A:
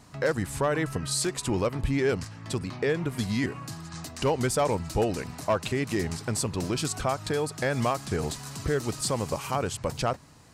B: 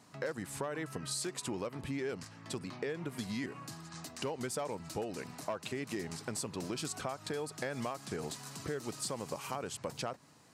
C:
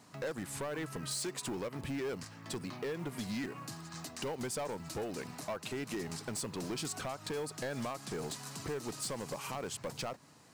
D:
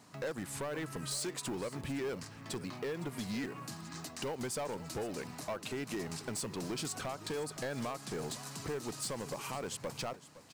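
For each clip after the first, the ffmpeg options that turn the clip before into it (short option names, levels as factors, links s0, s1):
-af "highpass=160,acompressor=threshold=0.0398:ratio=6,volume=0.501"
-af "asoftclip=type=hard:threshold=0.0178,acrusher=bits=6:mode=log:mix=0:aa=0.000001,volume=1.19"
-af "aecho=1:1:512:0.15"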